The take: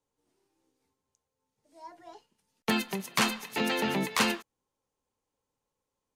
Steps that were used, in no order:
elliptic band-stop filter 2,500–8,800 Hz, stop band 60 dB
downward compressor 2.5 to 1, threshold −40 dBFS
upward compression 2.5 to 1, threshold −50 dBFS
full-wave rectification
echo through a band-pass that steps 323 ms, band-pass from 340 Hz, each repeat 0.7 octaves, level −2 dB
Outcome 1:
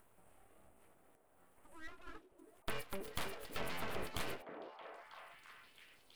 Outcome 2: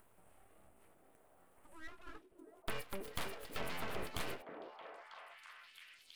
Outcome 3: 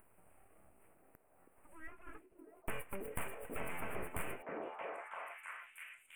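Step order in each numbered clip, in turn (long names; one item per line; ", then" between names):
upward compression, then downward compressor, then elliptic band-stop filter, then full-wave rectification, then echo through a band-pass that steps
downward compressor, then elliptic band-stop filter, then full-wave rectification, then echo through a band-pass that steps, then upward compression
full-wave rectification, then echo through a band-pass that steps, then downward compressor, then elliptic band-stop filter, then upward compression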